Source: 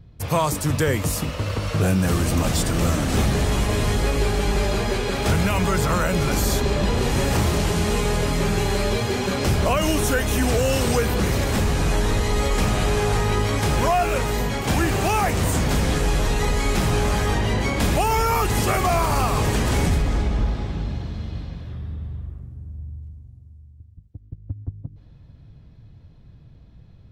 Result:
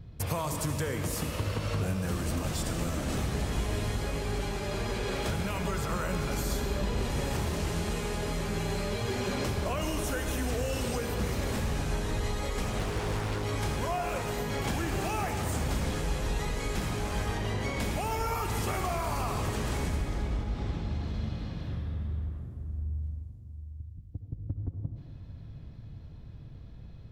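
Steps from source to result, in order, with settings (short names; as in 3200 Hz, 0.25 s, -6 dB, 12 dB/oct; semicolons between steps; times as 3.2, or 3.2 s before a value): compressor 10:1, threshold -29 dBFS, peak gain reduction 13.5 dB; on a send at -5.5 dB: reverb RT60 2.0 s, pre-delay 58 ms; 12.79–13.44 on the sum: Doppler distortion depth 0.91 ms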